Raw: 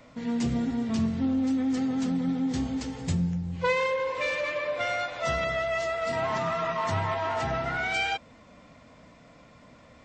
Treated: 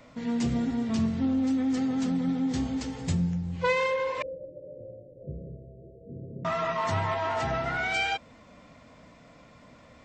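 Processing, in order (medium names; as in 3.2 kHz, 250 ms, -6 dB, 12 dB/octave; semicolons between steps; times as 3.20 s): 4.22–6.45 s: rippled Chebyshev low-pass 560 Hz, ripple 6 dB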